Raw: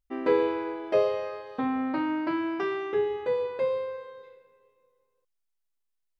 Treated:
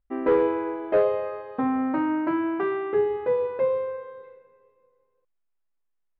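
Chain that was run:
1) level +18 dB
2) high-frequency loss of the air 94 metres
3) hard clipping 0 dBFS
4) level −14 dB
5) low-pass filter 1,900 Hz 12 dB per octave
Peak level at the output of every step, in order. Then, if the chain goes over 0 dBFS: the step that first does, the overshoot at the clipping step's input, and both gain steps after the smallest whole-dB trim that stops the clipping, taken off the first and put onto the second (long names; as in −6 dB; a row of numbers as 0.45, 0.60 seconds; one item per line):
+6.5, +6.0, 0.0, −14.0, −13.5 dBFS
step 1, 6.0 dB
step 1 +12 dB, step 4 −8 dB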